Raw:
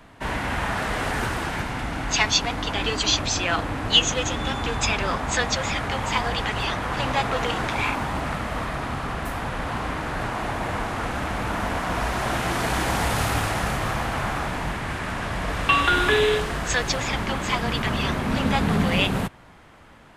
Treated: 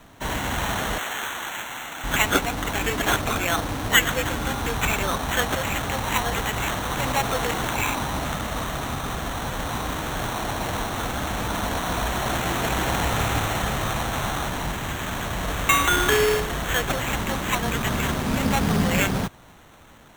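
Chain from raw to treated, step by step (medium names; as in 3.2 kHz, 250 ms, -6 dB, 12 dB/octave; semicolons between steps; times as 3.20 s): 0.98–2.04 s: band-pass filter 2.1 kHz, Q 0.59; sample-and-hold 9×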